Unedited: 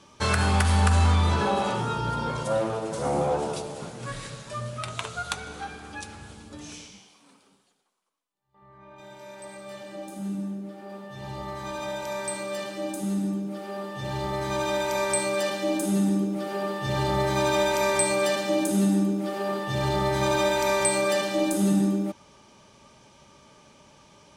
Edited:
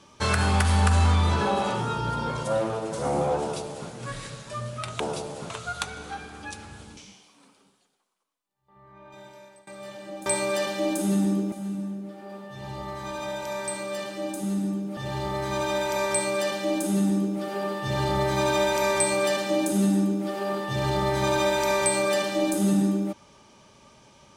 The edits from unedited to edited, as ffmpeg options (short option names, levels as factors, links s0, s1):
-filter_complex "[0:a]asplit=8[s0][s1][s2][s3][s4][s5][s6][s7];[s0]atrim=end=5.002[s8];[s1]atrim=start=3.398:end=3.902[s9];[s2]atrim=start=4.998:end=6.472[s10];[s3]atrim=start=6.828:end=9.53,asetpts=PTS-STARTPTS,afade=t=out:st=2.232:d=0.47:silence=0.0891251[s11];[s4]atrim=start=9.53:end=10.122,asetpts=PTS-STARTPTS,afade=t=in:d=0.004:c=hsin:silence=0.0891251[s12];[s5]atrim=start=15.098:end=16.362[s13];[s6]atrim=start=10.118:end=13.572[s14];[s7]atrim=start=13.958[s15];[s8][s9]acrossfade=d=0.004:c1=hsin:c2=hsin[s16];[s16][s10]acrossfade=d=0.004:c1=hsin:c2=hsin[s17];[s11][s12]concat=n=2:v=0:a=1[s18];[s17][s18]acrossfade=d=0.004:c1=hsin:c2=hsin[s19];[s19][s13]acrossfade=d=0.004:c1=hsin:c2=hsin[s20];[s20][s14]acrossfade=d=0.004:c1=hsin:c2=hsin[s21];[s21][s15]acrossfade=d=0.004:c1=hsin:c2=hsin"